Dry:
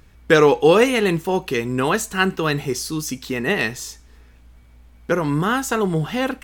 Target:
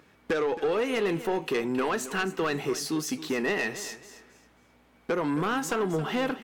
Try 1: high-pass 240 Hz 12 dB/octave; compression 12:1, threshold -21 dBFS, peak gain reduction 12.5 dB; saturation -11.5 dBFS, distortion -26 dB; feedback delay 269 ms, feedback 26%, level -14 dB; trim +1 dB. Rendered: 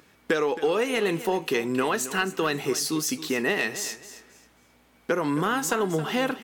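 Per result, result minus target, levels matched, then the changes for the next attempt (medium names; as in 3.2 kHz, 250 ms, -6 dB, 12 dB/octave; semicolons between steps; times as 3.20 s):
saturation: distortion -14 dB; 8 kHz band +4.0 dB
change: saturation -22 dBFS, distortion -13 dB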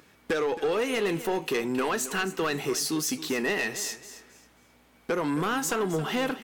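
8 kHz band +5.0 dB
add after high-pass: treble shelf 4 kHz -9 dB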